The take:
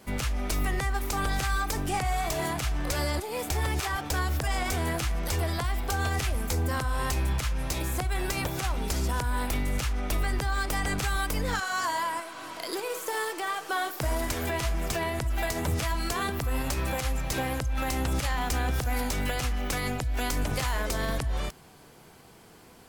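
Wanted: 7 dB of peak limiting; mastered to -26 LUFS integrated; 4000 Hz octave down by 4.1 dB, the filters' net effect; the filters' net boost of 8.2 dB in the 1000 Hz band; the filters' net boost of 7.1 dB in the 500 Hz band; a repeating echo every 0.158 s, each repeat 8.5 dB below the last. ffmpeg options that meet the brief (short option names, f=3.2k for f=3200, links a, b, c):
-af "equalizer=f=500:t=o:g=6.5,equalizer=f=1k:t=o:g=8.5,equalizer=f=4k:t=o:g=-6,alimiter=limit=-19dB:level=0:latency=1,aecho=1:1:158|316|474|632:0.376|0.143|0.0543|0.0206,volume=2dB"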